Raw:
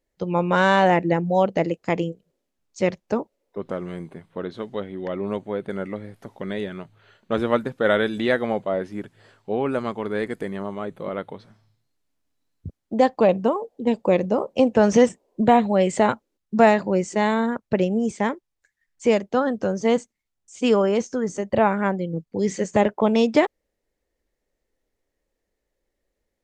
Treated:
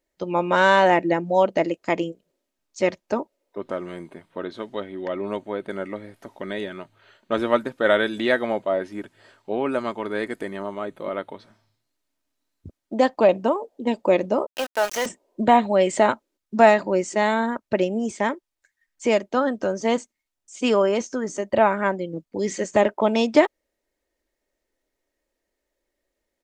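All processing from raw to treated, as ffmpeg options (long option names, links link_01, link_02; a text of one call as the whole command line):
ffmpeg -i in.wav -filter_complex "[0:a]asettb=1/sr,asplit=3[link_01][link_02][link_03];[link_01]atrim=end=14.464[link_04];[link_02]atrim=start=14.46:end=15.06,asetpts=PTS-STARTPTS,afade=type=in:duration=0.004:curve=qsin,afade=type=out:start_time=0.596:duration=0.004:curve=qsin,highpass=770,aeval=exprs='val(0)*gte(abs(val(0)),0.0422)':channel_layout=same[link_05];[link_03]atrim=start=15.056[link_06];[link_04][link_05]acrossfade=duration=0.004:curve1=hsin:curve2=qsin[link_07];[link_07][link_06]acrossfade=duration=0.004:curve1=qsin:curve2=hsin,lowshelf=frequency=210:gain=-9.5,aecho=1:1:3.2:0.34,volume=1.5dB" out.wav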